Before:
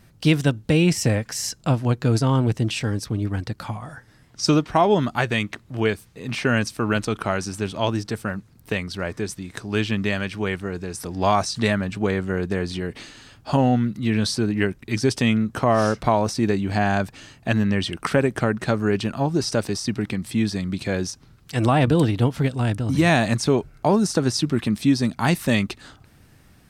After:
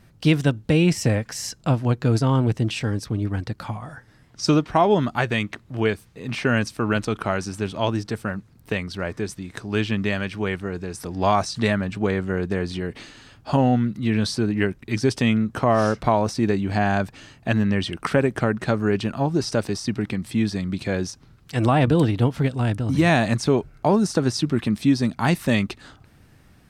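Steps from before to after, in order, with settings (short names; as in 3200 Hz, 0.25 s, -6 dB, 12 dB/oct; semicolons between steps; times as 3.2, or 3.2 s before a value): high shelf 4600 Hz -5 dB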